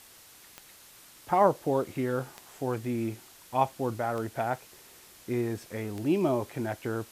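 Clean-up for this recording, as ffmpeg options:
ffmpeg -i in.wav -af "adeclick=threshold=4,afftdn=noise_reduction=21:noise_floor=-54" out.wav

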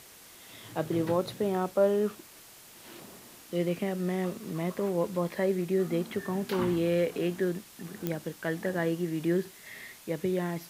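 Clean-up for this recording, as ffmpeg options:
ffmpeg -i in.wav -af "adeclick=threshold=4,afwtdn=0.0028" out.wav

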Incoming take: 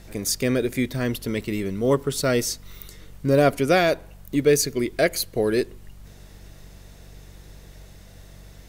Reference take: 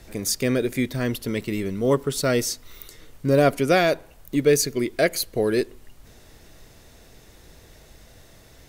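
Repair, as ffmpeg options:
ffmpeg -i in.wav -af "bandreject=frequency=47.7:width_type=h:width=4,bandreject=frequency=95.4:width_type=h:width=4,bandreject=frequency=143.1:width_type=h:width=4,bandreject=frequency=190.8:width_type=h:width=4" out.wav

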